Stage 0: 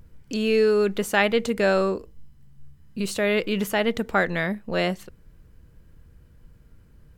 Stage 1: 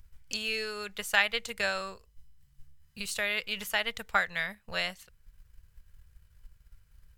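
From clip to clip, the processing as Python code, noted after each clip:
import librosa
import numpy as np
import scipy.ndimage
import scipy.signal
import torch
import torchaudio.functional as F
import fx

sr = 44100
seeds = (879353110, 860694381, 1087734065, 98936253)

y = fx.transient(x, sr, attack_db=6, sustain_db=-4)
y = fx.tone_stack(y, sr, knobs='10-0-10')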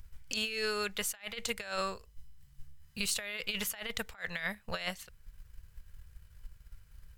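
y = fx.over_compress(x, sr, threshold_db=-35.0, ratio=-0.5)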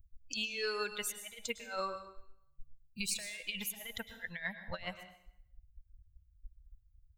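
y = fx.bin_expand(x, sr, power=2.0)
y = fx.rev_plate(y, sr, seeds[0], rt60_s=0.72, hf_ratio=0.9, predelay_ms=95, drr_db=9.0)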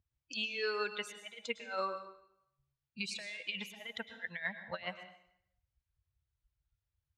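y = fx.bandpass_edges(x, sr, low_hz=200.0, high_hz=3900.0)
y = y * 10.0 ** (1.5 / 20.0)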